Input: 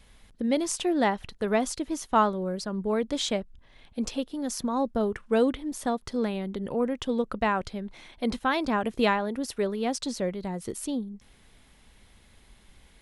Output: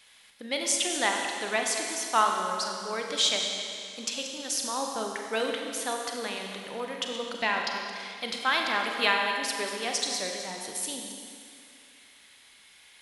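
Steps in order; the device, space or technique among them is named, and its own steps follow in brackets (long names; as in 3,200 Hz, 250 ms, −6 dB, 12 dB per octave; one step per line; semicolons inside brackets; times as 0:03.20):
delay that plays each chunk backwards 139 ms, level −11.5 dB
0:07.29–0:07.72: thirty-one-band graphic EQ 250 Hz +10 dB, 1,250 Hz −9 dB, 5,000 Hz +10 dB, 8,000 Hz −11 dB
filter by subtraction (in parallel: low-pass filter 2,800 Hz 12 dB per octave + polarity inversion)
on the sum: four-comb reverb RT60 2.4 s, combs from 32 ms, DRR 2 dB
level +4 dB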